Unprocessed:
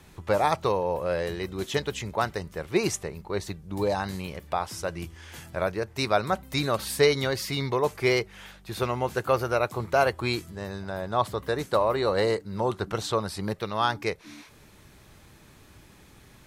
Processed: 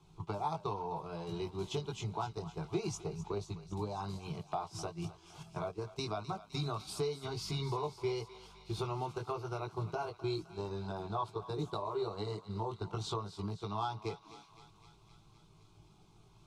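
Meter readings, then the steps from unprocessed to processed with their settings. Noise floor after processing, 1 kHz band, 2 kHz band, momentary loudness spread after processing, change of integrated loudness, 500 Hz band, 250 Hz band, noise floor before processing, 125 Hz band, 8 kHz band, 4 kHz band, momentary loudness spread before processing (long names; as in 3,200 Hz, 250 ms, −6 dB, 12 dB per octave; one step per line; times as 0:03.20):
−62 dBFS, −10.5 dB, −20.0 dB, 6 LU, −12.0 dB, −13.5 dB, −9.5 dB, −53 dBFS, −6.0 dB, −12.5 dB, −12.0 dB, 11 LU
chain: multi-voice chorus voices 6, 0.76 Hz, delay 19 ms, depth 1.1 ms
downward compressor 5 to 1, threshold −36 dBFS, peak gain reduction 16.5 dB
phaser with its sweep stopped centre 360 Hz, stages 8
noise gate −45 dBFS, range −9 dB
high-frequency loss of the air 77 metres
feedback echo with a high-pass in the loop 257 ms, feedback 74%, high-pass 760 Hz, level −14 dB
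level +4.5 dB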